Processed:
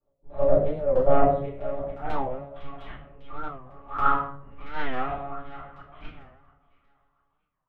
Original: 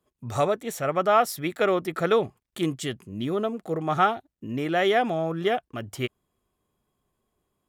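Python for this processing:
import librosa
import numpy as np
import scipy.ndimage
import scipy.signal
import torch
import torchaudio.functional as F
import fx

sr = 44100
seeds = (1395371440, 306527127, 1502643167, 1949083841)

y = fx.filter_sweep_bandpass(x, sr, from_hz=540.0, to_hz=1200.0, start_s=1.42, end_s=2.68, q=6.4)
y = fx.echo_thinned(y, sr, ms=689, feedback_pct=19, hz=290.0, wet_db=-22)
y = fx.level_steps(y, sr, step_db=10)
y = fx.chopper(y, sr, hz=0.51, depth_pct=65, duty_pct=75)
y = fx.lpc_monotone(y, sr, seeds[0], pitch_hz=140.0, order=8)
y = fx.transient(y, sr, attack_db=-6, sustain_db=6)
y = fx.room_shoebox(y, sr, seeds[1], volume_m3=64.0, walls='mixed', distance_m=2.4)
y = fx.record_warp(y, sr, rpm=45.0, depth_cents=160.0)
y = y * librosa.db_to_amplitude(4.0)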